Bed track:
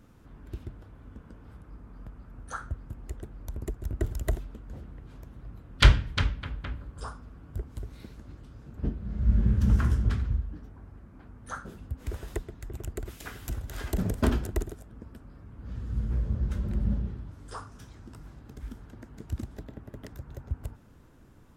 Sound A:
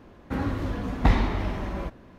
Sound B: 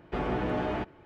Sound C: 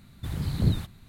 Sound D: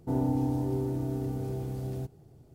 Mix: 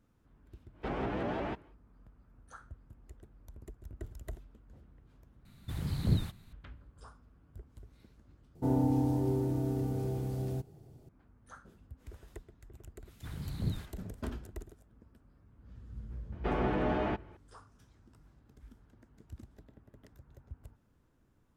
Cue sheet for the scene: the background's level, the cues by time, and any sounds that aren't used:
bed track −14.5 dB
0:00.71: mix in B −5 dB, fades 0.10 s + pitch modulation by a square or saw wave saw up 5.8 Hz, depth 160 cents
0:05.45: overwrite with C −5 dB
0:08.55: overwrite with D −0.5 dB
0:13.00: mix in C −10.5 dB, fades 0.05 s
0:16.32: mix in B −1 dB + high-shelf EQ 4,900 Hz −7 dB
not used: A

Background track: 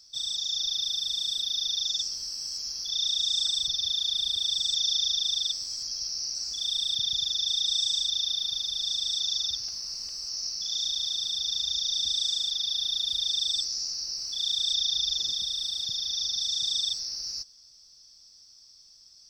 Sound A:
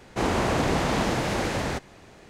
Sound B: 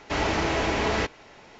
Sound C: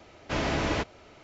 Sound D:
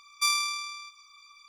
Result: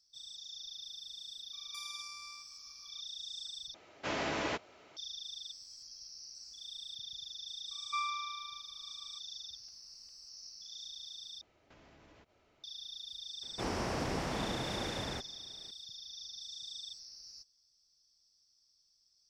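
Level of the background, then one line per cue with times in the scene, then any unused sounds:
background track −17.5 dB
0:01.53: mix in D −8.5 dB + downward compressor, threshold −36 dBFS
0:03.74: overwrite with C −5 dB + high-pass filter 340 Hz 6 dB per octave
0:07.71: mix in D −1 dB + low-pass filter 1,300 Hz
0:11.41: overwrite with C −17.5 dB + downward compressor 16 to 1, threshold −39 dBFS
0:13.42: mix in A −12 dB
not used: B

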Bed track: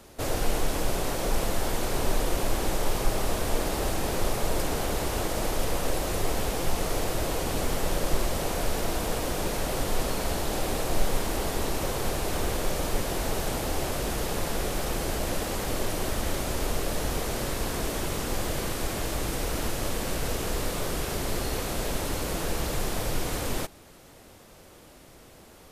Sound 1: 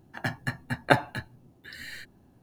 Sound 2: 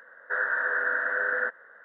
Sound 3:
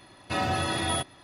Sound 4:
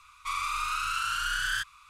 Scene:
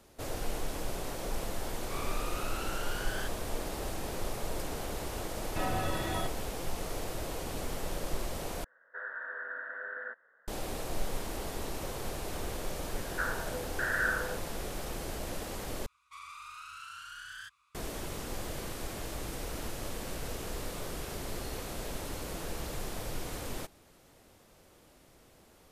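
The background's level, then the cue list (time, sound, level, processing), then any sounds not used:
bed track −9 dB
0:01.65: mix in 4 −11.5 dB
0:05.25: mix in 3 −5.5 dB + low-pass filter 2,000 Hz 6 dB per octave
0:08.64: overwrite with 2 −13.5 dB
0:12.88: mix in 2 −8.5 dB + auto-filter low-pass saw down 1.1 Hz 290–3,200 Hz
0:15.86: overwrite with 4 −16 dB + high-pass filter 56 Hz
not used: 1

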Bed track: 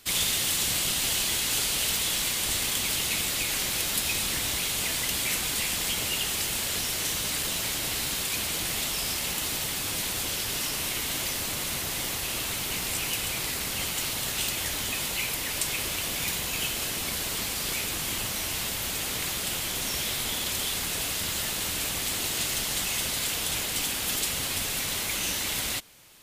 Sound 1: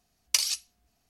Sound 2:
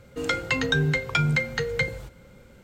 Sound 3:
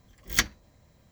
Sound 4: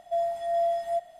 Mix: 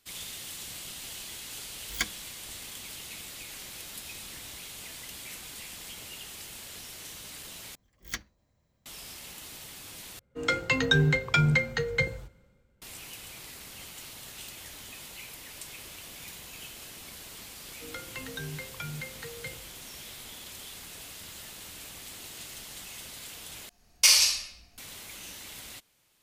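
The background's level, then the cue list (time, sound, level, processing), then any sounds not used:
bed track −14.5 dB
0:01.62: mix in 3 −8.5 dB + rippled gain that drifts along the octave scale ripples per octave 1.8, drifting +2.1 Hz, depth 11 dB
0:07.75: overwrite with 3 −12.5 dB
0:10.19: overwrite with 2 −1 dB + multiband upward and downward expander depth 70%
0:17.65: mix in 2 −16 dB
0:23.69: overwrite with 1 −4 dB + rectangular room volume 290 cubic metres, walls mixed, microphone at 5 metres
not used: 4

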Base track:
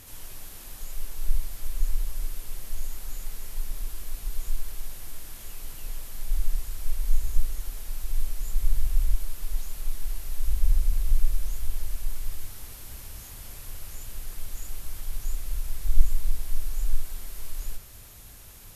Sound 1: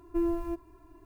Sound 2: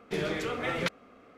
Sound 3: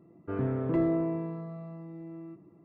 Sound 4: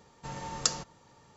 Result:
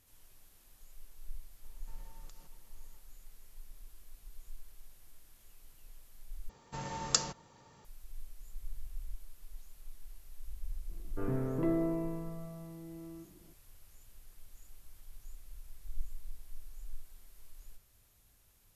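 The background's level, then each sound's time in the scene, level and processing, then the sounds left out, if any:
base track −19.5 dB
0:01.64: mix in 4 −13 dB + downward compressor, threshold −46 dBFS
0:06.49: overwrite with 4 −1 dB
0:10.89: mix in 3 −4.5 dB
not used: 1, 2

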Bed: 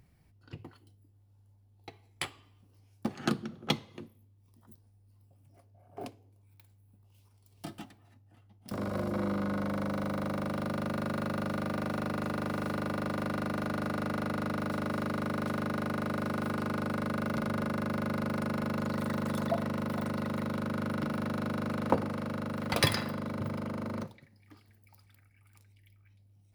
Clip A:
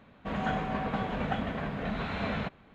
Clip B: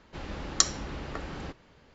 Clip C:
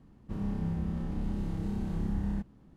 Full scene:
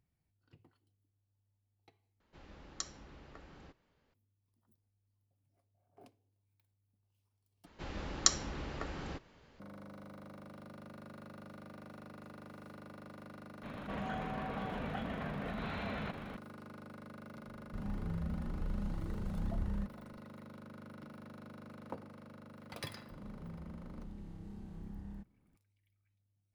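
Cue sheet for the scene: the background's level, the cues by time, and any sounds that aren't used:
bed −18 dB
0:02.20: overwrite with B −17 dB + high-shelf EQ 5,200 Hz −2.5 dB
0:07.66: overwrite with B −4 dB
0:13.63: mix in A −11 dB + envelope flattener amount 70%
0:17.44: mix in C −2 dB + flanger whose copies keep moving one way rising 1.9 Hz
0:22.81: mix in C −15 dB

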